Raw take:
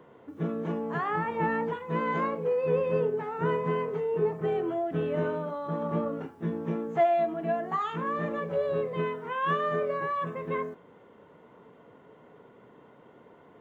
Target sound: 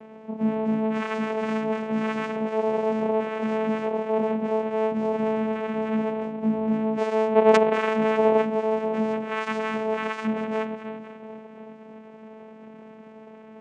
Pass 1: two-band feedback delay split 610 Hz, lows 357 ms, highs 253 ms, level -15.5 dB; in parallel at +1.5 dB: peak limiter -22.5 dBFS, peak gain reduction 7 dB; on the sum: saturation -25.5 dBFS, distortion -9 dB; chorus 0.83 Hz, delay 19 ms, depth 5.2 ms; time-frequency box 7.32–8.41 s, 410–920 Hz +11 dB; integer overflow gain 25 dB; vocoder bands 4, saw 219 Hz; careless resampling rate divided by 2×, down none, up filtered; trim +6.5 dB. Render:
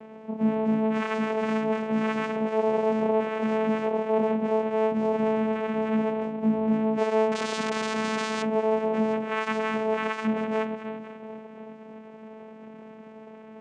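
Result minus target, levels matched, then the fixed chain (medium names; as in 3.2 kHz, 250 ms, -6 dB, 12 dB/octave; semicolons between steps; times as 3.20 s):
integer overflow: distortion +12 dB
two-band feedback delay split 610 Hz, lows 357 ms, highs 253 ms, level -15.5 dB; in parallel at +1.5 dB: peak limiter -22.5 dBFS, peak gain reduction 7 dB; on the sum: saturation -25.5 dBFS, distortion -9 dB; chorus 0.83 Hz, delay 19 ms, depth 5.2 ms; time-frequency box 7.32–8.41 s, 410–920 Hz +11 dB; integer overflow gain 15 dB; vocoder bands 4, saw 219 Hz; careless resampling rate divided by 2×, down none, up filtered; trim +6.5 dB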